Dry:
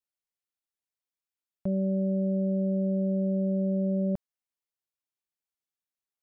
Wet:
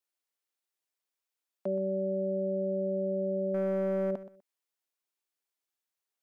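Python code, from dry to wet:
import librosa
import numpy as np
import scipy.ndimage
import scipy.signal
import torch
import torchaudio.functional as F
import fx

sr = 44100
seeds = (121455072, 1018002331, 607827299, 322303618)

p1 = scipy.signal.sosfilt(scipy.signal.butter(4, 280.0, 'highpass', fs=sr, output='sos'), x)
p2 = fx.leveller(p1, sr, passes=1, at=(3.54, 4.11))
p3 = p2 + fx.echo_feedback(p2, sr, ms=124, feedback_pct=20, wet_db=-15, dry=0)
y = p3 * 10.0 ** (3.5 / 20.0)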